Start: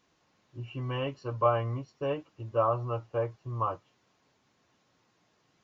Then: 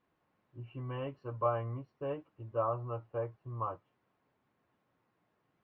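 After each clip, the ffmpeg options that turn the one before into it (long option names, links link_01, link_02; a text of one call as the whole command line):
ffmpeg -i in.wav -af "lowpass=2000,volume=-6dB" out.wav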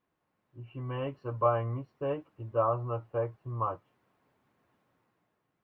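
ffmpeg -i in.wav -af "dynaudnorm=framelen=210:gausssize=7:maxgain=8dB,volume=-3dB" out.wav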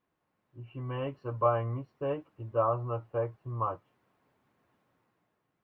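ffmpeg -i in.wav -af anull out.wav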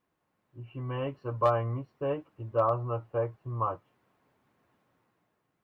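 ffmpeg -i in.wav -af "asoftclip=type=hard:threshold=-17dB,volume=1.5dB" out.wav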